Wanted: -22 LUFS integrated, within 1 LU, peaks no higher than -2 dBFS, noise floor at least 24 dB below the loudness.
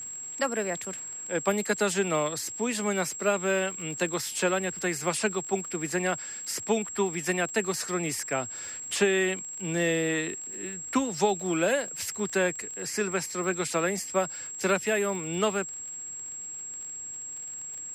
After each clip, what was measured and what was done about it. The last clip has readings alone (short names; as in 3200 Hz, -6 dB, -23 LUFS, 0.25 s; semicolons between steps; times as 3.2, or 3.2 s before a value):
ticks 46/s; steady tone 7600 Hz; tone level -36 dBFS; loudness -29.0 LUFS; peak -11.5 dBFS; loudness target -22.0 LUFS
-> de-click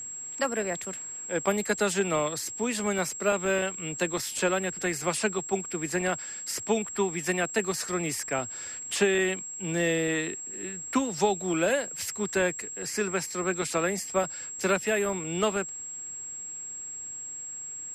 ticks 0.056/s; steady tone 7600 Hz; tone level -36 dBFS
-> notch 7600 Hz, Q 30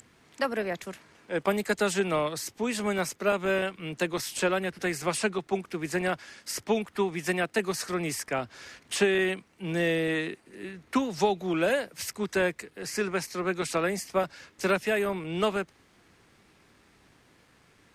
steady tone none; loudness -29.0 LUFS; peak -12.0 dBFS; loudness target -22.0 LUFS
-> gain +7 dB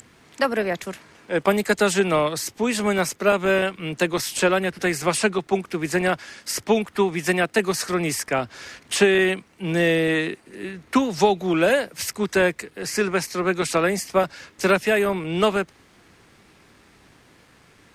loudness -22.0 LUFS; peak -5.0 dBFS; noise floor -55 dBFS